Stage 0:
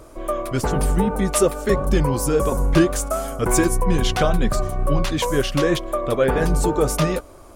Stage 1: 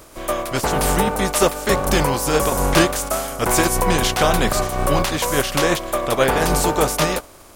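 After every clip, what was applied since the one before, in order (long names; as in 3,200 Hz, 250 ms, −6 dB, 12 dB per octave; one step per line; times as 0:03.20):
compressing power law on the bin magnitudes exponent 0.58
dynamic equaliser 750 Hz, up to +5 dB, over −33 dBFS, Q 0.99
level −1 dB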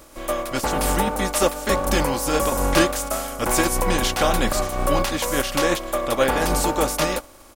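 comb filter 3.6 ms, depth 40%
level −3.5 dB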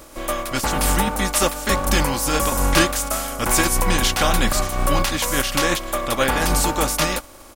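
dynamic equaliser 490 Hz, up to −7 dB, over −34 dBFS, Q 0.79
level +4 dB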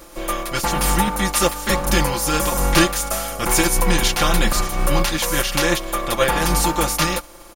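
notch filter 7,900 Hz, Q 14
comb filter 5.8 ms, depth 74%
level −1 dB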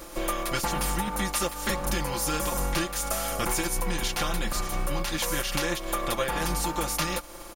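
downward compressor 6 to 1, threshold −25 dBFS, peak gain reduction 14.5 dB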